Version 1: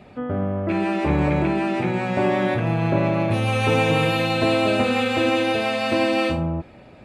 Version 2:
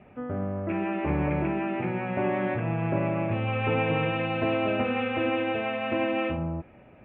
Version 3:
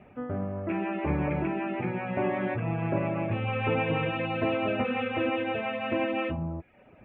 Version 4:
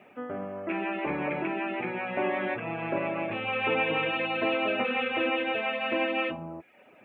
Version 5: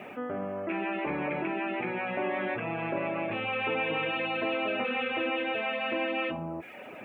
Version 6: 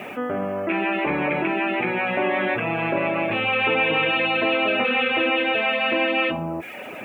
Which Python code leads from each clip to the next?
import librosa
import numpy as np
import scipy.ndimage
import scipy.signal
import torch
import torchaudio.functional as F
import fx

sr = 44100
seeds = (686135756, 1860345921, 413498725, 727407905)

y1 = scipy.signal.sosfilt(scipy.signal.butter(8, 2900.0, 'lowpass', fs=sr, output='sos'), x)
y1 = y1 * 10.0 ** (-6.5 / 20.0)
y2 = fx.dereverb_blind(y1, sr, rt60_s=0.6)
y3 = scipy.signal.sosfilt(scipy.signal.butter(2, 270.0, 'highpass', fs=sr, output='sos'), y2)
y3 = fx.high_shelf(y3, sr, hz=2600.0, db=10.5)
y4 = fx.env_flatten(y3, sr, amount_pct=50)
y4 = y4 * 10.0 ** (-4.0 / 20.0)
y5 = fx.high_shelf(y4, sr, hz=3300.0, db=8.0)
y5 = y5 * 10.0 ** (8.0 / 20.0)